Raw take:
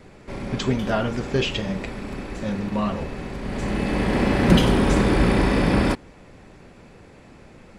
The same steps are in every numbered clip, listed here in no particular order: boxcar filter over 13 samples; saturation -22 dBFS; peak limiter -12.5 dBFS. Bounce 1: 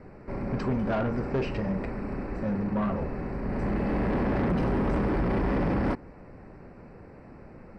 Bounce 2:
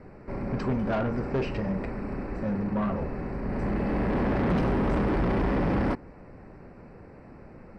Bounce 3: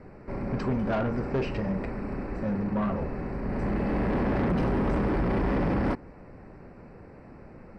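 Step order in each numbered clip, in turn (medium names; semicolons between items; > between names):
peak limiter > boxcar filter > saturation; boxcar filter > saturation > peak limiter; boxcar filter > peak limiter > saturation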